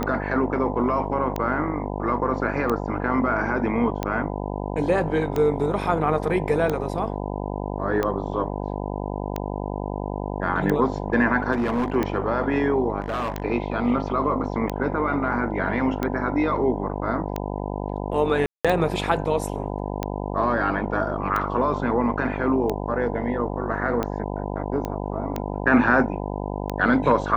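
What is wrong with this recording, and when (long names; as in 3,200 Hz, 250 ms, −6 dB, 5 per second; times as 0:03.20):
mains buzz 50 Hz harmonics 20 −29 dBFS
scratch tick 45 rpm −12 dBFS
0:11.52–0:11.96: clipping −19.5 dBFS
0:13.00–0:13.42: clipping −22.5 dBFS
0:18.46–0:18.65: drop-out 186 ms
0:24.85: click −16 dBFS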